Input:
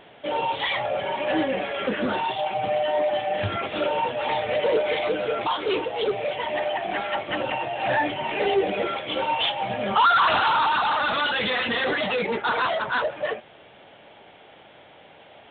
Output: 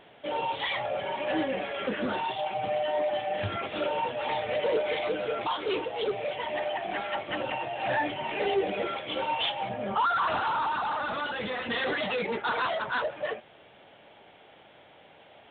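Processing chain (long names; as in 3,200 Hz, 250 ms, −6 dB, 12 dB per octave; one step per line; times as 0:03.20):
0:09.69–0:11.70: high-shelf EQ 2,100 Hz −11.5 dB
level −5 dB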